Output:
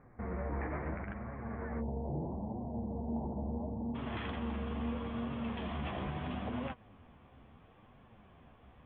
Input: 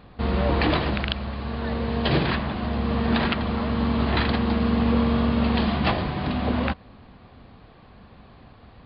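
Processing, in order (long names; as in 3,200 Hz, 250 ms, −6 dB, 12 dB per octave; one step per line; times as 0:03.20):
Chebyshev low-pass filter 2,200 Hz, order 6, from 0:01.79 910 Hz, from 0:03.94 3,400 Hz
brickwall limiter −20.5 dBFS, peak gain reduction 10 dB
flanger 0.75 Hz, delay 7.1 ms, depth 8.4 ms, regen +35%
level −6 dB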